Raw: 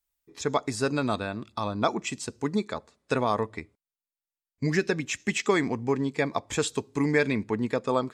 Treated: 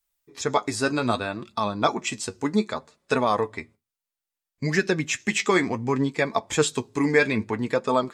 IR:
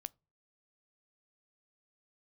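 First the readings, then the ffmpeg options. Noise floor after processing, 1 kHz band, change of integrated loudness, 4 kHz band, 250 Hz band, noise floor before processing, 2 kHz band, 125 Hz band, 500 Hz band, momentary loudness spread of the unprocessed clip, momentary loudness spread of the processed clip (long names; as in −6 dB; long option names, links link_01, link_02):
below −85 dBFS, +4.5 dB, +3.5 dB, +4.5 dB, +2.5 dB, below −85 dBFS, +5.0 dB, +1.5 dB, +3.0 dB, 8 LU, 8 LU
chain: -filter_complex "[0:a]flanger=delay=4.3:depth=6.9:regen=45:speed=0.63:shape=triangular,asplit=2[link_01][link_02];[1:a]atrim=start_sample=2205,asetrate=57330,aresample=44100,lowshelf=frequency=380:gain=-5.5[link_03];[link_02][link_03]afir=irnorm=-1:irlink=0,volume=16dB[link_04];[link_01][link_04]amix=inputs=2:normalize=0,volume=-3.5dB"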